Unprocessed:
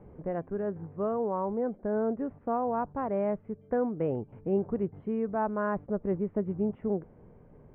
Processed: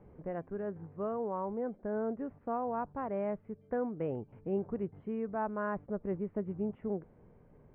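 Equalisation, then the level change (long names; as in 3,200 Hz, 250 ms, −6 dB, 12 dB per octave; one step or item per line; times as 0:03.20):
high-frequency loss of the air 250 metres
high-shelf EQ 2,200 Hz +12 dB
−5.5 dB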